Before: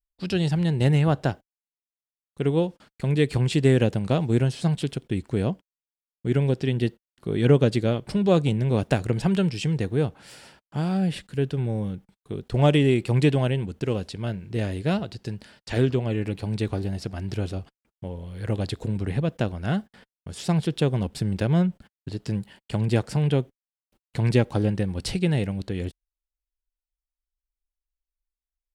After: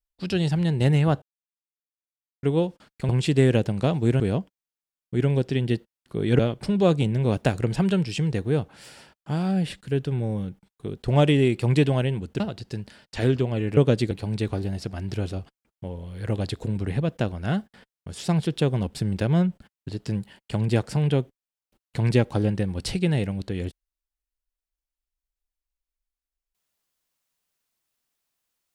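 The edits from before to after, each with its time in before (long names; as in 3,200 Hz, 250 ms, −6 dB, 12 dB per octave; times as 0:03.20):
0:01.22–0:02.43: silence
0:03.09–0:03.36: remove
0:04.47–0:05.32: remove
0:07.51–0:07.85: move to 0:16.31
0:13.86–0:14.94: remove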